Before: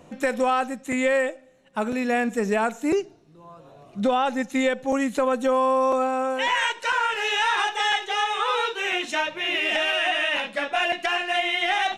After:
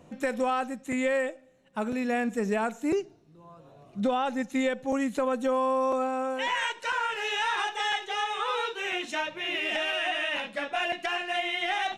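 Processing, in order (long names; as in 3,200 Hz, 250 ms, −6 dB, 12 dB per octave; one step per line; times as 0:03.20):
parametric band 110 Hz +4 dB 3 octaves
level −6 dB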